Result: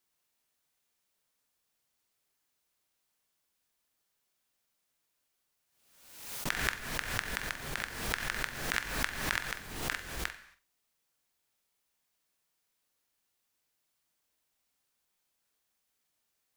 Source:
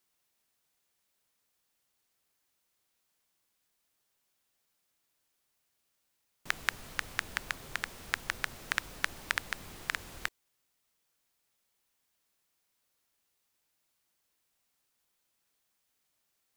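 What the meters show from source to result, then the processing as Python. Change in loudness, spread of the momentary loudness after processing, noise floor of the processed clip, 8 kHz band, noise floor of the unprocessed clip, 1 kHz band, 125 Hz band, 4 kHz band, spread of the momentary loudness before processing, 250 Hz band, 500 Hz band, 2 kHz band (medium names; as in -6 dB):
+1.5 dB, 8 LU, -81 dBFS, +4.0 dB, -79 dBFS, +1.5 dB, +8.0 dB, +1.5 dB, 5 LU, +8.0 dB, +6.5 dB, +0.5 dB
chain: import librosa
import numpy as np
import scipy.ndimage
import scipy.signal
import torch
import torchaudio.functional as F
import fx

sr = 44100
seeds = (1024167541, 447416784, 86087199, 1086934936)

p1 = x + fx.room_flutter(x, sr, wall_m=7.8, rt60_s=0.26, dry=0)
p2 = fx.rev_gated(p1, sr, seeds[0], gate_ms=300, shape='falling', drr_db=9.0)
p3 = fx.pre_swell(p2, sr, db_per_s=59.0)
y = p3 * 10.0 ** (-2.5 / 20.0)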